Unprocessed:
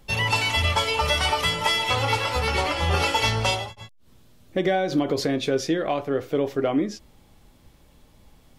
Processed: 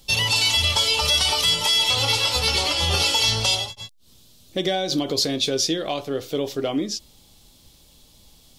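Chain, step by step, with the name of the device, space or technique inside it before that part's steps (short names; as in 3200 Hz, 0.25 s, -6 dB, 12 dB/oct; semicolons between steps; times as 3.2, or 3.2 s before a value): over-bright horn tweeter (resonant high shelf 2700 Hz +11.5 dB, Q 1.5; limiter -9 dBFS, peak gain reduction 6 dB); gain -1.5 dB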